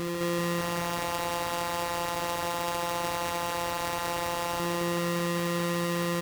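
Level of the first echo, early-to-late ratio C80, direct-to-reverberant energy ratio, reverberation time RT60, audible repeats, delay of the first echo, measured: −8.5 dB, no reverb audible, no reverb audible, no reverb audible, 4, 66 ms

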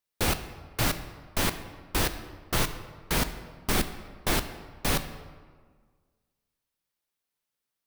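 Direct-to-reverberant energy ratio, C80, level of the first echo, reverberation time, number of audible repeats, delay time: 9.5 dB, 12.5 dB, no echo audible, 1.6 s, no echo audible, no echo audible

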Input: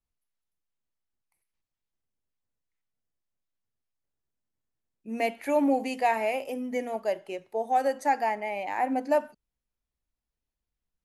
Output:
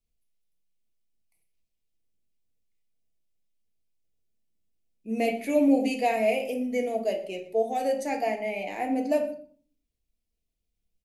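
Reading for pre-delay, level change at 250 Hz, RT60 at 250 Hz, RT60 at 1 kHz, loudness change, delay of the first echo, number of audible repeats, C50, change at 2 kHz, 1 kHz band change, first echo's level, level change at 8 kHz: 3 ms, +4.5 dB, 0.65 s, 0.40 s, +1.0 dB, 120 ms, 1, 10.5 dB, −0.5 dB, −4.0 dB, −20.5 dB, +2.5 dB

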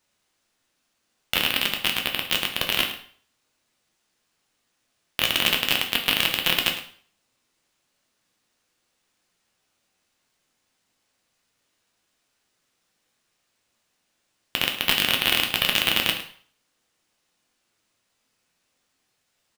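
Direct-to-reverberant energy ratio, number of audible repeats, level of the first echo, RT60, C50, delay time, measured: 2.0 dB, 1, −13.5 dB, 0.50 s, 7.5 dB, 107 ms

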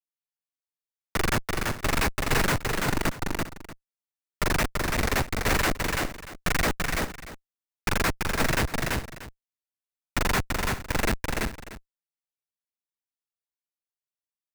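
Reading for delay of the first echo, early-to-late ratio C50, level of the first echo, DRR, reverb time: 336 ms, no reverb audible, −3.0 dB, no reverb audible, no reverb audible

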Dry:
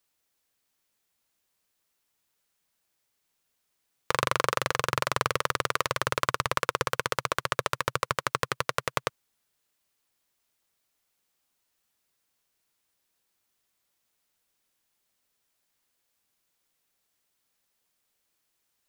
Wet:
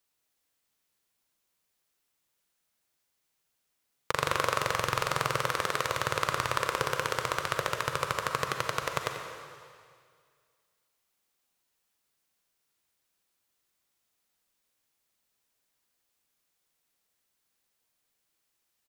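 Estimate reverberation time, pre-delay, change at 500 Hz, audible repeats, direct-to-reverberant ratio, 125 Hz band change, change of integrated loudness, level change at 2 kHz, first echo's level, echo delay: 2.0 s, 37 ms, −1.0 dB, 1, 3.5 dB, −1.0 dB, −1.5 dB, −1.5 dB, −13.0 dB, 90 ms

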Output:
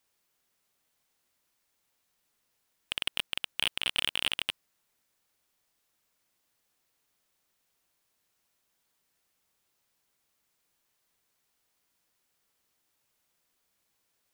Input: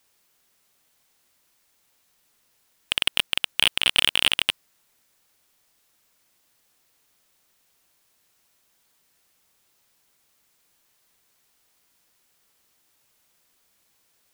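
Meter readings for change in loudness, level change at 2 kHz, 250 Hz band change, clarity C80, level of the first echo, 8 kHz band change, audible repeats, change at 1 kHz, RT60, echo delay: −9.5 dB, −9.5 dB, −8.5 dB, no reverb audible, no echo audible, −10.5 dB, no echo audible, −9.0 dB, no reverb audible, no echo audible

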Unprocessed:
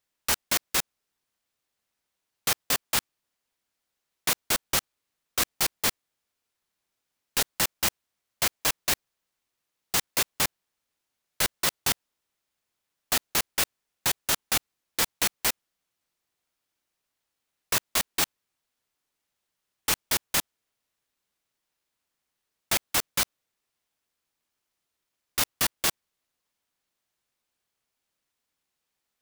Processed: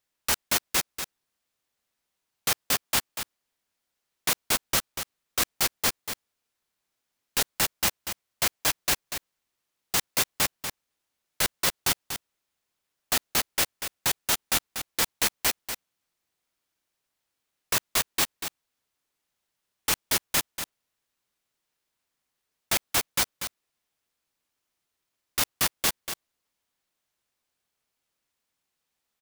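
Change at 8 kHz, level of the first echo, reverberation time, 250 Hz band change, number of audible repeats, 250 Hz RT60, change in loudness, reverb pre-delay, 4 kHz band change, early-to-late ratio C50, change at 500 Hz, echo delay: +0.5 dB, −8.5 dB, no reverb audible, +0.5 dB, 1, no reverb audible, 0.0 dB, no reverb audible, +0.5 dB, no reverb audible, +0.5 dB, 240 ms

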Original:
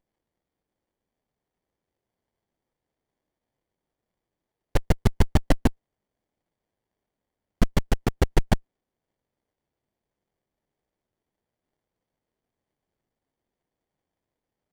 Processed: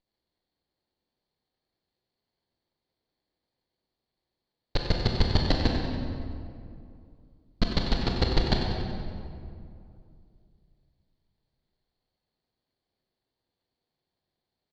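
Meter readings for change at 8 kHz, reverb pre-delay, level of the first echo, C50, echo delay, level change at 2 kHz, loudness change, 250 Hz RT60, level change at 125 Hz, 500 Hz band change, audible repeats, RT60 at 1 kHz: −9.5 dB, 20 ms, −9.0 dB, 1.0 dB, 94 ms, −1.0 dB, −2.5 dB, 2.9 s, −2.0 dB, −2.0 dB, 2, 2.3 s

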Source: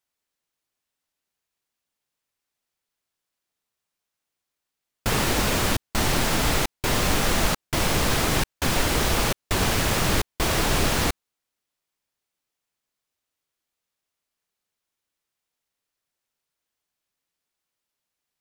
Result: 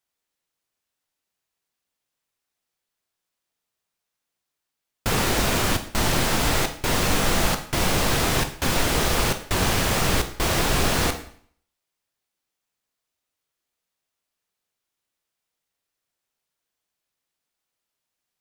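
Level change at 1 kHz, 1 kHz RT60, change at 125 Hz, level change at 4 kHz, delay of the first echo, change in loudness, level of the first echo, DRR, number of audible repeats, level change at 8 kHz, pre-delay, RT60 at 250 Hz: +1.0 dB, 0.60 s, +0.5 dB, +1.0 dB, no echo audible, +1.0 dB, no echo audible, 6.5 dB, no echo audible, +1.0 dB, 7 ms, 0.60 s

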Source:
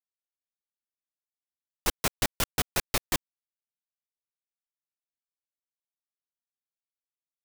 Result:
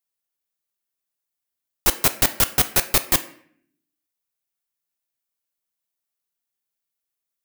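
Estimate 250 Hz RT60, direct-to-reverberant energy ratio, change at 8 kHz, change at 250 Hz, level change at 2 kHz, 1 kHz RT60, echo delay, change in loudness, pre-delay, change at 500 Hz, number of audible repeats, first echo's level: 0.90 s, 9.0 dB, +10.0 dB, +6.0 dB, +7.0 dB, 0.55 s, no echo audible, +10.5 dB, 3 ms, +6.5 dB, no echo audible, no echo audible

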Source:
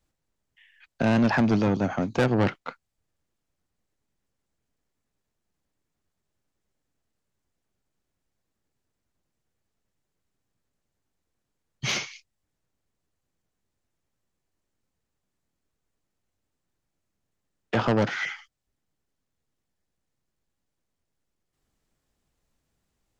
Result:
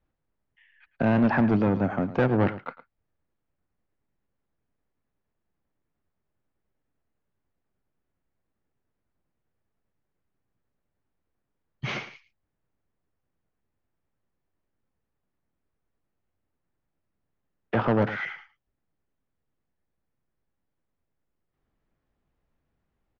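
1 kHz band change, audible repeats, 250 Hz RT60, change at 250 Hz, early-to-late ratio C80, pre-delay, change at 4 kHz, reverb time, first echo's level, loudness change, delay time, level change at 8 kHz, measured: 0.0 dB, 1, no reverb audible, 0.0 dB, no reverb audible, no reverb audible, −9.0 dB, no reverb audible, −15.0 dB, 0.0 dB, 109 ms, can't be measured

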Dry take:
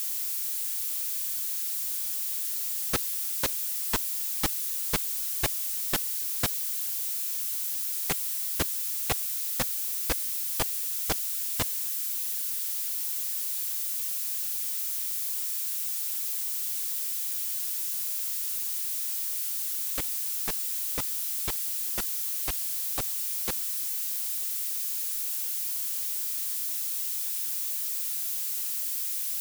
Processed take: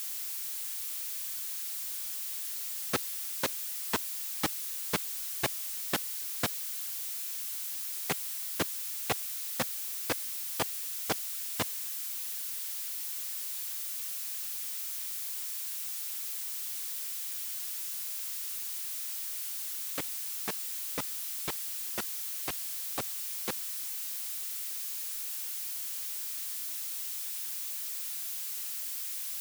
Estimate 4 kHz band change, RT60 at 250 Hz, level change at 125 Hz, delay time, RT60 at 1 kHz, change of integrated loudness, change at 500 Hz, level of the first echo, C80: −3.0 dB, no reverb audible, −5.0 dB, no echo audible, no reverb audible, −6.0 dB, 0.0 dB, no echo audible, no reverb audible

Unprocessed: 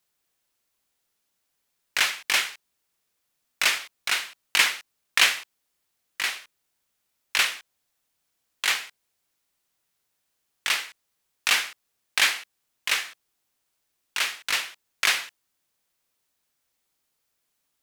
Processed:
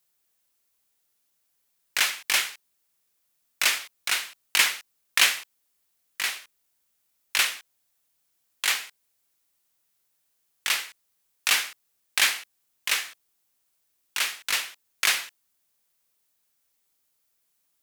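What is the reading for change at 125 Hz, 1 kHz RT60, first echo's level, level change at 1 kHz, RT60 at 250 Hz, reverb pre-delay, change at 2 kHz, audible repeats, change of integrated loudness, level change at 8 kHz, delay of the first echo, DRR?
can't be measured, no reverb audible, no echo audible, −2.0 dB, no reverb audible, no reverb audible, −1.5 dB, no echo audible, −0.5 dB, +2.0 dB, no echo audible, no reverb audible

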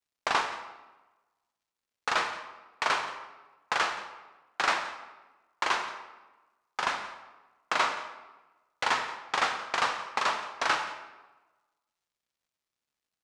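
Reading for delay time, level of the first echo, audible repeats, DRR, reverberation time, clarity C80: 175 ms, −19.0 dB, 1, 5.5 dB, 1.2 s, 9.5 dB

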